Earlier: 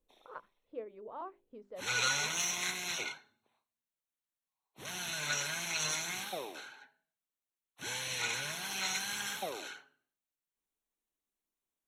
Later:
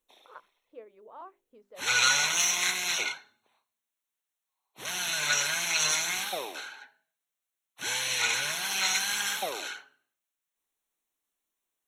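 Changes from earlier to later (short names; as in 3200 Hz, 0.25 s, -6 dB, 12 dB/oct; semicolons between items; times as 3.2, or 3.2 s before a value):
background +8.5 dB; master: add low shelf 410 Hz -10.5 dB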